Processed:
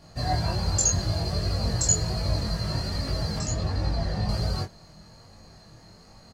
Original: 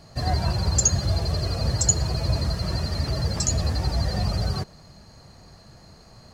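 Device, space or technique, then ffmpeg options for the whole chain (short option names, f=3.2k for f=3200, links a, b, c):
double-tracked vocal: -filter_complex "[0:a]asplit=2[a][b];[b]adelay=19,volume=-3dB[c];[a][c]amix=inputs=2:normalize=0,flanger=delay=22.5:depth=3.2:speed=1.3,asettb=1/sr,asplit=3[d][e][f];[d]atrim=end=3.394[g];[e]atrim=start=3.39:end=4.29,asetpts=PTS-STARTPTS,afade=t=in:d=0.004:c=qsin,afade=t=out:st=0.896:d=0.004:c=qsin,aemphasis=mode=reproduction:type=50kf[h];[f]atrim=start=4.286[i];[g][h]acrossfade=d=0.004:c1=hsin:c2=qsin[j];[j][i]acrossfade=d=0.004:c1=qsin:c2=hsin"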